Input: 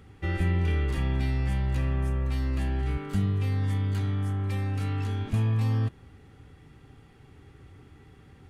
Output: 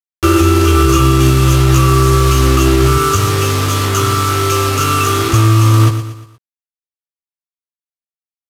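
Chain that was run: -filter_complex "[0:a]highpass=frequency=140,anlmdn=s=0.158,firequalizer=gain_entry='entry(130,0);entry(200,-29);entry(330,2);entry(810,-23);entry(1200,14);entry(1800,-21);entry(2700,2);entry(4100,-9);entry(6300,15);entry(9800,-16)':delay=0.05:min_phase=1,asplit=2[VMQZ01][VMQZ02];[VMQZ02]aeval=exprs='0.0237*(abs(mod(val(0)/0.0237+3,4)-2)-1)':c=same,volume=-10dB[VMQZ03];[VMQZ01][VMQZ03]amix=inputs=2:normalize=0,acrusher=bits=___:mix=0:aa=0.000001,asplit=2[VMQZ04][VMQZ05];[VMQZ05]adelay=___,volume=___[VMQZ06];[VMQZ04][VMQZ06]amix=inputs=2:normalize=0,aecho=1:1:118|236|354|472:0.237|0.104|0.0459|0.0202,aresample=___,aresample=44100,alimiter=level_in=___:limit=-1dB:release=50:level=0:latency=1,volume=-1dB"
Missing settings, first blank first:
6, 15, -5.5dB, 32000, 24dB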